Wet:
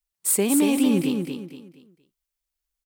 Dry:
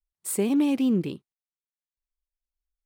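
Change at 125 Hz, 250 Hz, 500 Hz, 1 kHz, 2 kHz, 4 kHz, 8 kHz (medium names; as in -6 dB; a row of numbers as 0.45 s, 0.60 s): +2.0 dB, +3.0 dB, +4.0 dB, +5.5 dB, +8.0 dB, +8.5 dB, +10.5 dB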